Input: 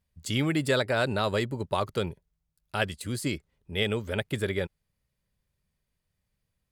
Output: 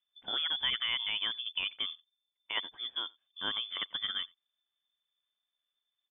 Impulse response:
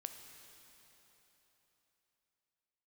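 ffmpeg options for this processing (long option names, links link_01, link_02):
-filter_complex "[0:a]asplit=2[link_01][link_02];[link_02]adelay=99.13,volume=-27dB,highshelf=frequency=4000:gain=-2.23[link_03];[link_01][link_03]amix=inputs=2:normalize=0,atempo=1.1,lowpass=frequency=3100:width_type=q:width=0.5098,lowpass=frequency=3100:width_type=q:width=0.6013,lowpass=frequency=3100:width_type=q:width=0.9,lowpass=frequency=3100:width_type=q:width=2.563,afreqshift=-3600,volume=-7dB"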